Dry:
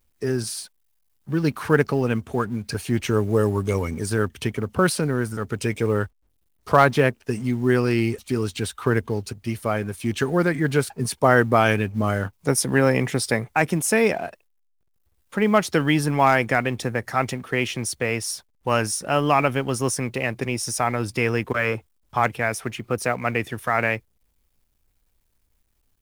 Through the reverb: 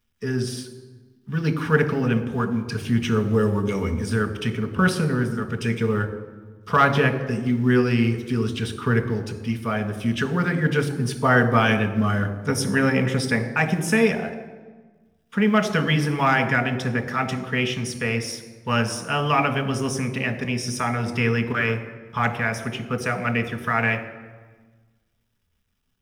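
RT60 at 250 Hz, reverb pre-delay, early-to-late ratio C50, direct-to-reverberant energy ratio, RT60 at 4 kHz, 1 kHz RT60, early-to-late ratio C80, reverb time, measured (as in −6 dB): 1.6 s, 3 ms, 10.5 dB, 5.5 dB, 1.0 s, 1.3 s, 12.5 dB, 1.4 s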